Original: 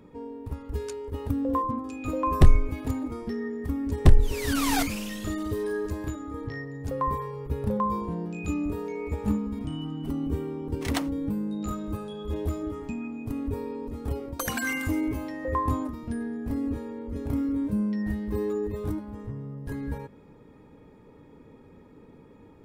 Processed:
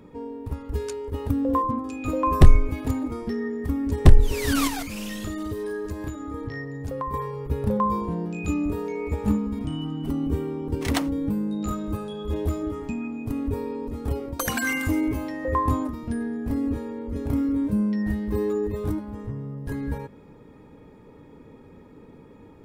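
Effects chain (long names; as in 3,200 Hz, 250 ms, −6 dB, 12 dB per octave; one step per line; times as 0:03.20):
0:04.67–0:07.14: downward compressor 6 to 1, threshold −31 dBFS, peak gain reduction 10 dB
level +3.5 dB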